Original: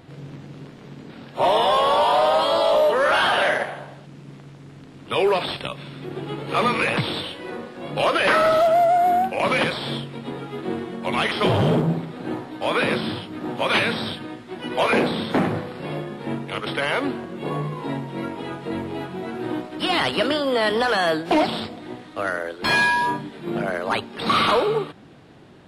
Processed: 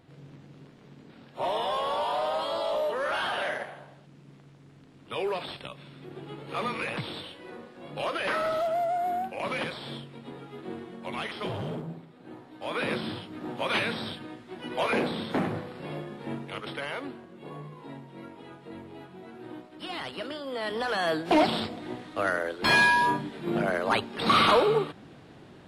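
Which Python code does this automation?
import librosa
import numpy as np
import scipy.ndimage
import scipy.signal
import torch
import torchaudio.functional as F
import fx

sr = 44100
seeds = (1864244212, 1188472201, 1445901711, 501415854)

y = fx.gain(x, sr, db=fx.line((11.05, -11.0), (12.19, -19.0), (12.91, -7.5), (16.43, -7.5), (17.25, -15.0), (20.39, -15.0), (21.44, -2.0)))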